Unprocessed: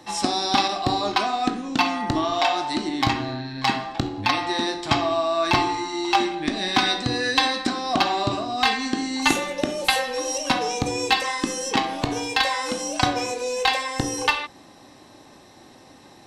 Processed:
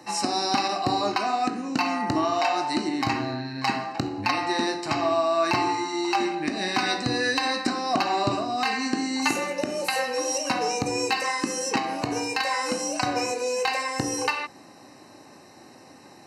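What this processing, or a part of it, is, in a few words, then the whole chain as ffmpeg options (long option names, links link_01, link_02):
PA system with an anti-feedback notch: -af "highpass=110,asuperstop=centerf=3400:order=4:qfactor=3.8,alimiter=limit=-12dB:level=0:latency=1:release=131"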